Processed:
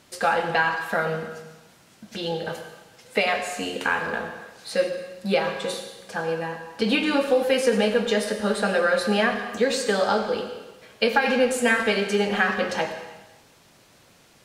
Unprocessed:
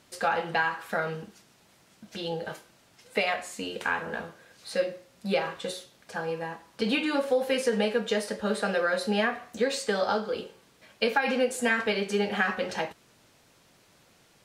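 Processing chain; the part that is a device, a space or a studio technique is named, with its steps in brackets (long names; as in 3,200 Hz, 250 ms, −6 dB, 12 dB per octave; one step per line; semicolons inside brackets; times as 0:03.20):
saturated reverb return (on a send at −7 dB: convolution reverb RT60 1.1 s, pre-delay 77 ms + soft clipping −21.5 dBFS, distortion −15 dB)
on the sum: level +4.5 dB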